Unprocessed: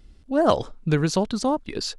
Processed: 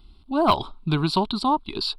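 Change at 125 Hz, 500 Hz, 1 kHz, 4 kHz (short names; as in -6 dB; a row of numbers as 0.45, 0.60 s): -1.0, -4.5, +5.0, +4.5 dB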